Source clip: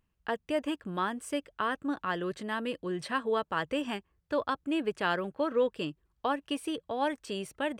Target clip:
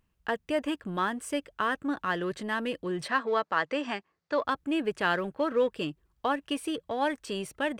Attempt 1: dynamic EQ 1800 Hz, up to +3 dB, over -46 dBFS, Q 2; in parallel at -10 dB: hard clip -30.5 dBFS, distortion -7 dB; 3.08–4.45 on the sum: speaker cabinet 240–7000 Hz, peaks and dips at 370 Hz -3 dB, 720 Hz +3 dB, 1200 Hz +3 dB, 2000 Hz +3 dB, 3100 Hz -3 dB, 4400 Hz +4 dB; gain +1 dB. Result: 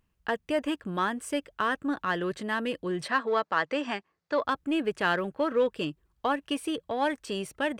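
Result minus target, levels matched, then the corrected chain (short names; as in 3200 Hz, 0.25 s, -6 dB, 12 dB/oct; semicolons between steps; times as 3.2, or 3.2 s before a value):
hard clip: distortion -5 dB
dynamic EQ 1800 Hz, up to +3 dB, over -46 dBFS, Q 2; in parallel at -10 dB: hard clip -40 dBFS, distortion -3 dB; 3.08–4.45 on the sum: speaker cabinet 240–7000 Hz, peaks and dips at 370 Hz -3 dB, 720 Hz +3 dB, 1200 Hz +3 dB, 2000 Hz +3 dB, 3100 Hz -3 dB, 4400 Hz +4 dB; gain +1 dB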